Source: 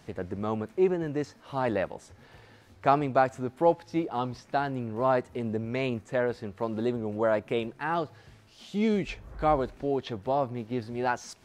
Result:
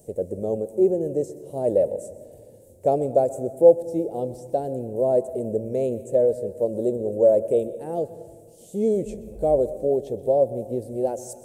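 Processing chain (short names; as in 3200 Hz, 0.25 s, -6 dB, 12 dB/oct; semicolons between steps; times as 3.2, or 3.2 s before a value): EQ curve 290 Hz 0 dB, 550 Hz +13 dB, 1200 Hz -27 dB, 4900 Hz -11 dB, 8300 Hz +14 dB; reverb RT60 1.6 s, pre-delay 0.126 s, DRR 15 dB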